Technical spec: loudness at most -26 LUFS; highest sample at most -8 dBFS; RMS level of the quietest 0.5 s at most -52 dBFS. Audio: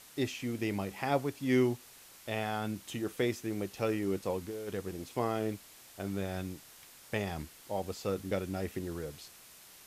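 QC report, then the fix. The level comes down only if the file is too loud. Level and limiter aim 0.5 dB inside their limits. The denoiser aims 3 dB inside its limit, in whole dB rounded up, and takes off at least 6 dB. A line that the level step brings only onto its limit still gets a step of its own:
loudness -35.5 LUFS: OK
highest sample -16.5 dBFS: OK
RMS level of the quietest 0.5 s -55 dBFS: OK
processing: none

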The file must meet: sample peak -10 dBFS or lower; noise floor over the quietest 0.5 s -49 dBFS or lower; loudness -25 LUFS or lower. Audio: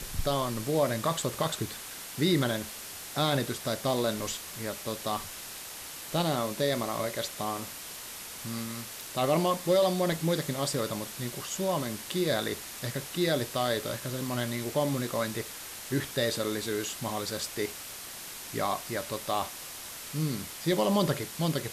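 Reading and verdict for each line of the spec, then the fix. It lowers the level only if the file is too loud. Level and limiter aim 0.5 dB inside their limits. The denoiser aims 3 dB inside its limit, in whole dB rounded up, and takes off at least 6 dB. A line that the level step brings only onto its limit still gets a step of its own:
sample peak -14.0 dBFS: OK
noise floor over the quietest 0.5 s -42 dBFS: fail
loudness -31.0 LUFS: OK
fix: denoiser 10 dB, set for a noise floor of -42 dBFS

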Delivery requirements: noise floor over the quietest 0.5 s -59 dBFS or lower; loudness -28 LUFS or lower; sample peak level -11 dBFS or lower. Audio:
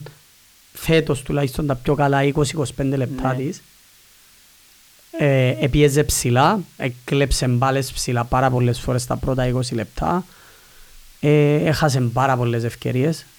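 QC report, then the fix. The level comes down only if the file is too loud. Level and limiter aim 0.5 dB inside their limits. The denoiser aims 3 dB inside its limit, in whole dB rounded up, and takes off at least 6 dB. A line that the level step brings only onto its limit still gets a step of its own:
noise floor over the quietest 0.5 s -52 dBFS: fail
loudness -19.5 LUFS: fail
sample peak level -4.0 dBFS: fail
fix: gain -9 dB

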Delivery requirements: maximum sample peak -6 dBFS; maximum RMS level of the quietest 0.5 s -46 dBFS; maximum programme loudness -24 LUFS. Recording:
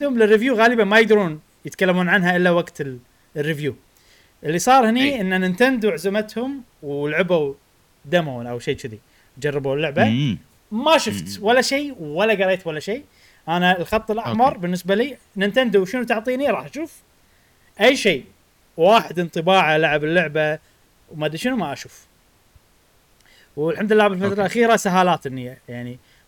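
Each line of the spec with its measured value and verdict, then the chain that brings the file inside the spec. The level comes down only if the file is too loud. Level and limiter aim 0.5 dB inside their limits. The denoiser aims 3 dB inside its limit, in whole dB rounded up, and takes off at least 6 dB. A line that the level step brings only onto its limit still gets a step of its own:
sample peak -5.5 dBFS: fail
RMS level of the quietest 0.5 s -57 dBFS: OK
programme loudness -19.0 LUFS: fail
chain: gain -5.5 dB

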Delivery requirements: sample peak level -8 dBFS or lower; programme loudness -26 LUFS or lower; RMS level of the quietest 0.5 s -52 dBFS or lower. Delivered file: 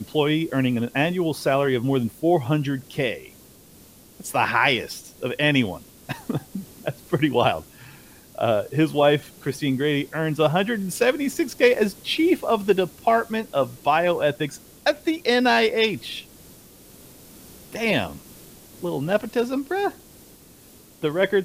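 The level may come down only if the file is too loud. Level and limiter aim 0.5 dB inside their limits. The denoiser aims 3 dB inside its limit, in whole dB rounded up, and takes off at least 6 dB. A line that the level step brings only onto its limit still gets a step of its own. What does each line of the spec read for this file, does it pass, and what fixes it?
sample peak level -5.0 dBFS: fail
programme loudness -22.5 LUFS: fail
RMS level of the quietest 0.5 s -49 dBFS: fail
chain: gain -4 dB

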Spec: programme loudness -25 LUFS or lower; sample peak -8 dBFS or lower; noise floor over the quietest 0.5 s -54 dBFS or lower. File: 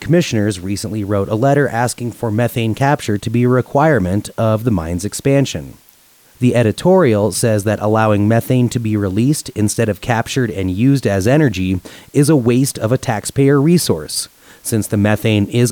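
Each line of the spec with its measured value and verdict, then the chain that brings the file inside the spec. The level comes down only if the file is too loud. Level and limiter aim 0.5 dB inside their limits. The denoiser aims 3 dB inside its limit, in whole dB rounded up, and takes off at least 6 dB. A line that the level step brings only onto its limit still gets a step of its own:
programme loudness -15.5 LUFS: fail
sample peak -2.5 dBFS: fail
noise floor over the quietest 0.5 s -49 dBFS: fail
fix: gain -10 dB

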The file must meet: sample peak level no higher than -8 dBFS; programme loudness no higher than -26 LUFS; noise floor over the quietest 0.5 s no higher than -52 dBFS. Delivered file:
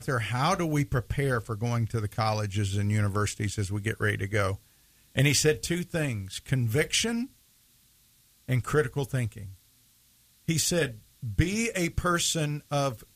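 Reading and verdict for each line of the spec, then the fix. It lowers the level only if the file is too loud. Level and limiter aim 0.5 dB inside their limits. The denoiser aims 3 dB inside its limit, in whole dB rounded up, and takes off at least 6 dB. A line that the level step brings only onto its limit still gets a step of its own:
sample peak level -9.0 dBFS: OK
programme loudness -28.0 LUFS: OK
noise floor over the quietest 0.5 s -62 dBFS: OK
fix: none

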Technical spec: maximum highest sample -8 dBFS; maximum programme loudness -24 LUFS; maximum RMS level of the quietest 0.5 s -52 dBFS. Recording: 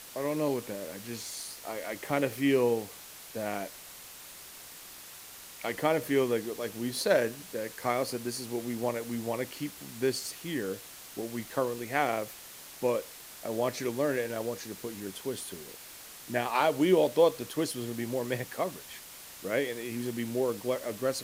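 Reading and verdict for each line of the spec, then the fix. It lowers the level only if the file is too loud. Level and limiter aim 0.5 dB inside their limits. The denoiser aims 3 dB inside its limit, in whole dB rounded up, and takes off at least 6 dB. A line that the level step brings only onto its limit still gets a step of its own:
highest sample -11.5 dBFS: OK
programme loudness -31.5 LUFS: OK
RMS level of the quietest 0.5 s -48 dBFS: fail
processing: denoiser 7 dB, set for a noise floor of -48 dBFS

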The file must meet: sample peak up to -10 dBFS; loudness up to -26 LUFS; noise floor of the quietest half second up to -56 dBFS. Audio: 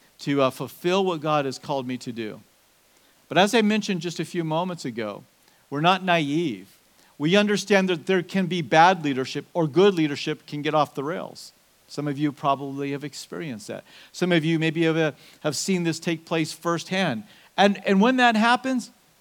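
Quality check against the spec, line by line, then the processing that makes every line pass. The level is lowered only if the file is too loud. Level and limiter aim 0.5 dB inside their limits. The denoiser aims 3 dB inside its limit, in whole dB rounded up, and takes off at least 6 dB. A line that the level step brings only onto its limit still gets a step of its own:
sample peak -3.0 dBFS: fail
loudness -23.5 LUFS: fail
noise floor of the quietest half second -60 dBFS: OK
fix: gain -3 dB; limiter -10.5 dBFS

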